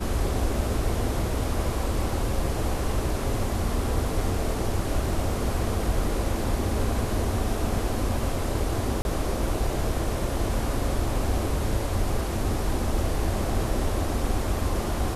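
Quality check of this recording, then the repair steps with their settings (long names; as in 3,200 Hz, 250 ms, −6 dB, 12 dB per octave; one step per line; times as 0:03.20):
0:09.02–0:09.05: drop-out 31 ms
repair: repair the gap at 0:09.02, 31 ms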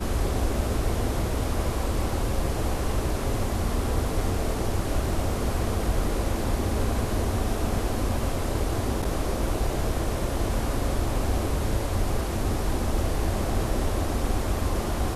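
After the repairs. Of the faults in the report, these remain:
none of them is left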